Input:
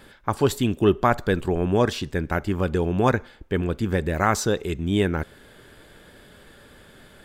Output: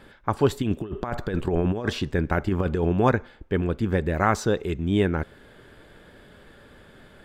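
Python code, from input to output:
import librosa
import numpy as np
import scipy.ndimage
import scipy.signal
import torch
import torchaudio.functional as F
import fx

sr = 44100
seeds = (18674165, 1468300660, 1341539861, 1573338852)

y = fx.high_shelf(x, sr, hz=4400.0, db=-10.5)
y = fx.over_compress(y, sr, threshold_db=-23.0, ratio=-0.5, at=(0.62, 2.93))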